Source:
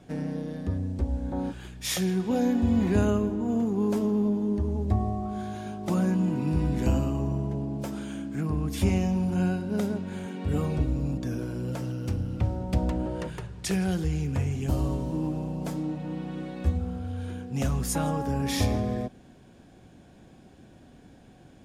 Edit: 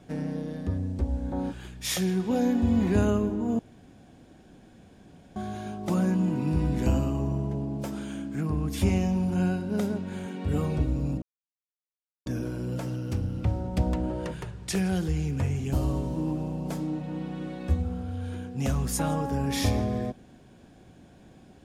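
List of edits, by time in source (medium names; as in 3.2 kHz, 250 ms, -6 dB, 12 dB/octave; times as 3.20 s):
3.59–5.36 s: room tone
11.22 s: insert silence 1.04 s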